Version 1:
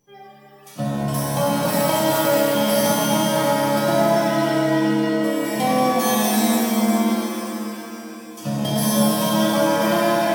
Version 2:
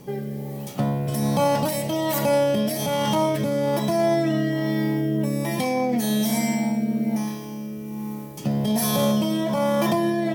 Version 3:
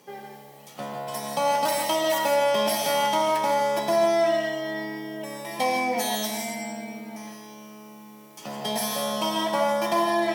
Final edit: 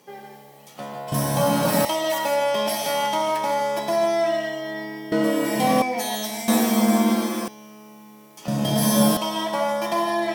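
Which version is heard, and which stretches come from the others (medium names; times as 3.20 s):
3
1.12–1.85 s: from 1
5.12–5.82 s: from 1
6.48–7.48 s: from 1
8.48–9.17 s: from 1
not used: 2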